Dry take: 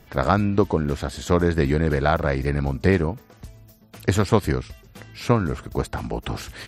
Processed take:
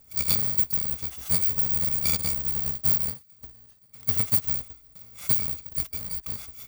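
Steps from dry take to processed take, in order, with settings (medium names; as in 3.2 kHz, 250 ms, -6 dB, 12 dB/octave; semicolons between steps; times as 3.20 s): bit-reversed sample order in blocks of 128 samples; formant shift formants -3 st; trim -4.5 dB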